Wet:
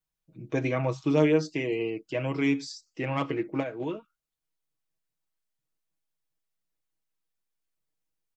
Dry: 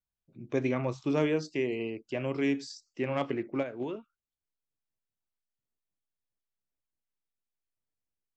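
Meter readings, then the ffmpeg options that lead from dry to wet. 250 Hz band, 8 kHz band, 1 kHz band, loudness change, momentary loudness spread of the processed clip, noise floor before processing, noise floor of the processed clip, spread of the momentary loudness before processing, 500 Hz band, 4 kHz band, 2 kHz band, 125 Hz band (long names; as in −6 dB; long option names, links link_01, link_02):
+3.5 dB, can't be measured, +3.5 dB, +3.5 dB, 12 LU, below −85 dBFS, below −85 dBFS, 9 LU, +3.0 dB, +3.5 dB, +4.0 dB, +5.5 dB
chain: -af "aecho=1:1:6.3:0.68,volume=2dB"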